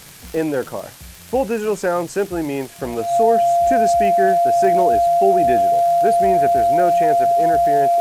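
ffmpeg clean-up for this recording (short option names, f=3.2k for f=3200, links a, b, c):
-af "adeclick=t=4,bandreject=f=690:w=30,afftdn=nr=26:nf=-37"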